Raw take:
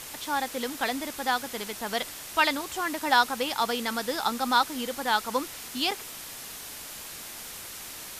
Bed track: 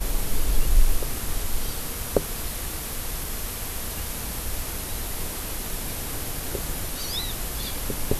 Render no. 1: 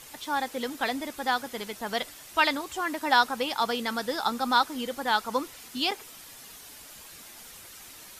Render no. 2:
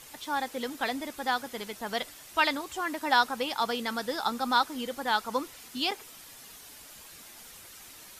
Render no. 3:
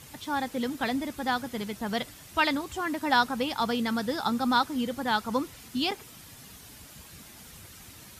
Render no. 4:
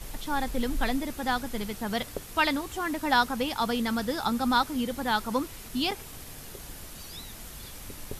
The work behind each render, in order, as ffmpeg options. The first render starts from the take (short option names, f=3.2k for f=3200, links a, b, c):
-af "afftdn=nr=8:nf=-41"
-af "volume=-2dB"
-af "highpass=59,bass=f=250:g=15,treble=f=4k:g=-1"
-filter_complex "[1:a]volume=-14dB[a];[0:a][a]amix=inputs=2:normalize=0"